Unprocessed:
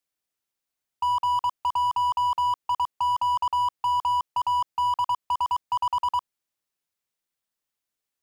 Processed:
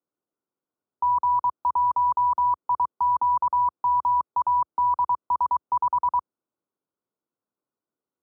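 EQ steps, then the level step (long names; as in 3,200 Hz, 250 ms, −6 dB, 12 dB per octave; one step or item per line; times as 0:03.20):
high-pass filter 77 Hz 24 dB per octave
Chebyshev low-pass with heavy ripple 1,500 Hz, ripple 3 dB
parametric band 310 Hz +10 dB 2.3 octaves
0.0 dB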